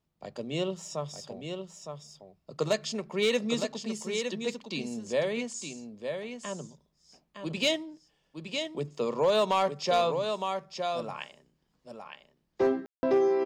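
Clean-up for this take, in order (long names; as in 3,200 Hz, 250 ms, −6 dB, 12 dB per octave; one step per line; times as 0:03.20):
clipped peaks rebuilt −17.5 dBFS
ambience match 0:12.86–0:13.03
echo removal 912 ms −6.5 dB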